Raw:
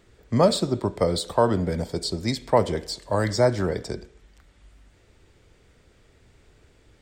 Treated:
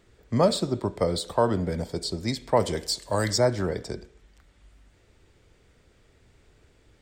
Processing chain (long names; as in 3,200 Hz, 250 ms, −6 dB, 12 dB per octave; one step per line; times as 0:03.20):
0:02.60–0:03.38: high-shelf EQ 3,600 Hz +10.5 dB
level −2.5 dB